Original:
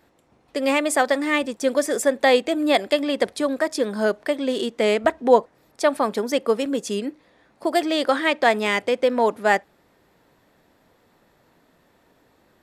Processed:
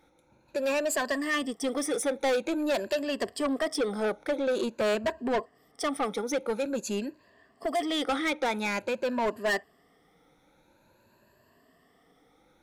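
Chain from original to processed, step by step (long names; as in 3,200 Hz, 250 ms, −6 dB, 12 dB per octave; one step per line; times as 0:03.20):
rippled gain that drifts along the octave scale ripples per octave 1.4, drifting +0.48 Hz, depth 15 dB
0:03.26–0:04.95: dynamic equaliser 580 Hz, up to +6 dB, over −30 dBFS, Q 0.97
soft clipping −17 dBFS, distortion −8 dB
level −6 dB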